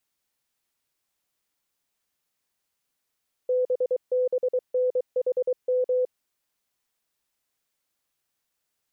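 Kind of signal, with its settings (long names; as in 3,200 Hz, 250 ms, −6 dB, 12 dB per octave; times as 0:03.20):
Morse code "BBNHM" 23 words per minute 504 Hz −20 dBFS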